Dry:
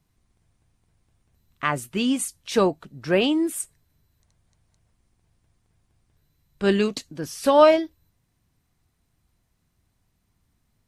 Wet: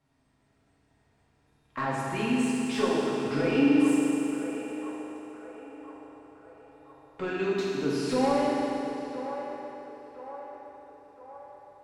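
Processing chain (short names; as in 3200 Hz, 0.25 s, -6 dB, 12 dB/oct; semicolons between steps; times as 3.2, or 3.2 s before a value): compressor, threshold -26 dBFS, peak gain reduction 15.5 dB; resonator 290 Hz, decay 1.1 s, mix 70%; overdrive pedal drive 22 dB, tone 1200 Hz, clips at -17.5 dBFS; narrowing echo 0.933 s, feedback 60%, band-pass 940 Hz, level -9 dB; FDN reverb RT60 3.1 s, high-frequency decay 0.9×, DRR -7.5 dB; speed mistake 48 kHz file played as 44.1 kHz; gain -2 dB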